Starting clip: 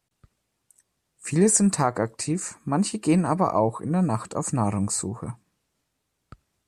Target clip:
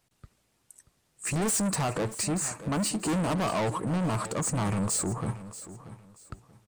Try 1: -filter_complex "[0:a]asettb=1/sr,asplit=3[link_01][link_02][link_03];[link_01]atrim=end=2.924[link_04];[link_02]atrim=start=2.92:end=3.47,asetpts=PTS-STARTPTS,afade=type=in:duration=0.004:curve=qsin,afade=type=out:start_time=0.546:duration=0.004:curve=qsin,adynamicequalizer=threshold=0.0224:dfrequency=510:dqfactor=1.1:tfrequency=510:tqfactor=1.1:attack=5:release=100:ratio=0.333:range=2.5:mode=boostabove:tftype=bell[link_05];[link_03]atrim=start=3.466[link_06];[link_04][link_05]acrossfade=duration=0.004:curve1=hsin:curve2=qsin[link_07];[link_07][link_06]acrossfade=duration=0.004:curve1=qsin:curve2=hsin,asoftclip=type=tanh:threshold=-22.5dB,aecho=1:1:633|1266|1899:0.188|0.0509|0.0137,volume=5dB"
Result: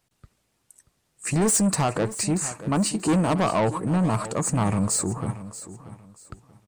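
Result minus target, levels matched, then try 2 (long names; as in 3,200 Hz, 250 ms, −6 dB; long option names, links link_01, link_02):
soft clipping: distortion −4 dB
-filter_complex "[0:a]asettb=1/sr,asplit=3[link_01][link_02][link_03];[link_01]atrim=end=2.924[link_04];[link_02]atrim=start=2.92:end=3.47,asetpts=PTS-STARTPTS,afade=type=in:duration=0.004:curve=qsin,afade=type=out:start_time=0.546:duration=0.004:curve=qsin,adynamicequalizer=threshold=0.0224:dfrequency=510:dqfactor=1.1:tfrequency=510:tqfactor=1.1:attack=5:release=100:ratio=0.333:range=2.5:mode=boostabove:tftype=bell[link_05];[link_03]atrim=start=3.466[link_06];[link_04][link_05]acrossfade=duration=0.004:curve1=hsin:curve2=qsin[link_07];[link_07][link_06]acrossfade=duration=0.004:curve1=qsin:curve2=hsin,asoftclip=type=tanh:threshold=-30.5dB,aecho=1:1:633|1266|1899:0.188|0.0509|0.0137,volume=5dB"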